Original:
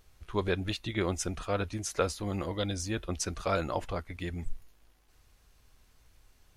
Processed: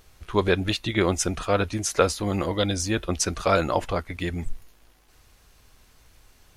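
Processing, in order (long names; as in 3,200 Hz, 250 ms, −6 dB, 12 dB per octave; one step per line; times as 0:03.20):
low-shelf EQ 110 Hz −4.5 dB
level +9 dB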